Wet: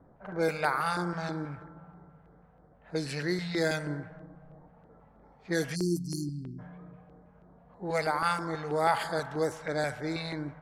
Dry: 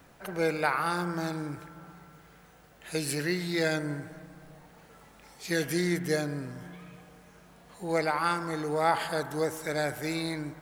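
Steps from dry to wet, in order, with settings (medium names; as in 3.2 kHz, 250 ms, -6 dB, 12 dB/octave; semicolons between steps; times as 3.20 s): level-controlled noise filter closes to 750 Hz, open at -23.5 dBFS; spectral selection erased 5.75–6.59 s, 400–4200 Hz; LFO notch square 3.1 Hz 340–2700 Hz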